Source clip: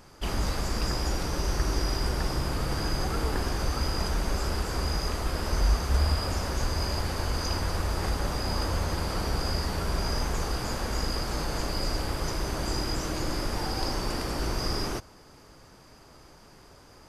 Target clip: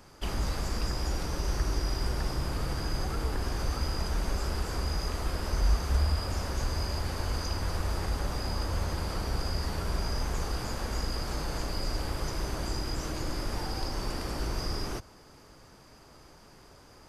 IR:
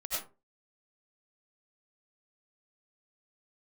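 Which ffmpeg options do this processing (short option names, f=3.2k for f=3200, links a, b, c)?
-filter_complex "[0:a]acrossover=split=120[a][b];[b]acompressor=threshold=-32dB:ratio=6[c];[a][c]amix=inputs=2:normalize=0,volume=-1.5dB"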